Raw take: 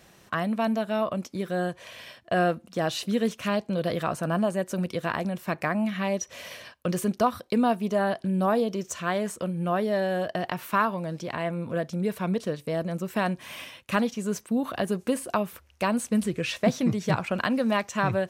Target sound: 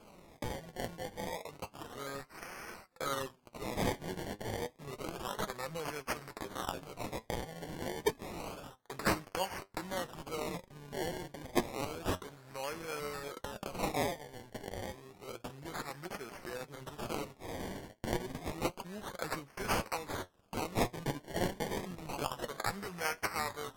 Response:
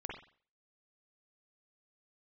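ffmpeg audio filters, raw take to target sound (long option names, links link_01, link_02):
-af "aderivative,acrusher=samples=18:mix=1:aa=0.000001:lfo=1:lforange=18:lforate=0.38,flanger=delay=3.5:depth=5.1:regen=61:speed=0.48:shape=triangular,asetrate=33957,aresample=44100,volume=9.5dB"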